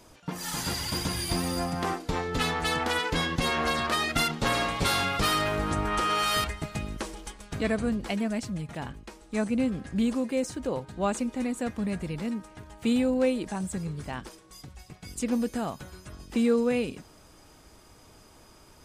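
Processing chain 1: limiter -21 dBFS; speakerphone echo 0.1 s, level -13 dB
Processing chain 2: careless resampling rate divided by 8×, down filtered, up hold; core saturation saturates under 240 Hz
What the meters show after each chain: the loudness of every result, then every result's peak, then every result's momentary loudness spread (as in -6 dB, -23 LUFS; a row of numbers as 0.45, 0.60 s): -31.0, -30.0 LUFS; -20.5, -14.0 dBFS; 11, 13 LU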